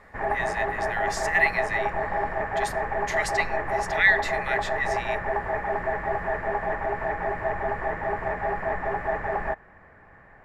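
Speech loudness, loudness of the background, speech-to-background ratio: -27.0 LUFS, -28.0 LUFS, 1.0 dB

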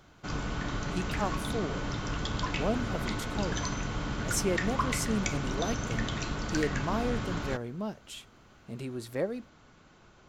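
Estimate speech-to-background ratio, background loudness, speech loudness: -1.5 dB, -34.0 LUFS, -35.5 LUFS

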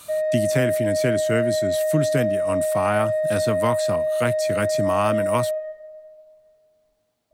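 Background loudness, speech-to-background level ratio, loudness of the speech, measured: -23.0 LUFS, -3.0 dB, -26.0 LUFS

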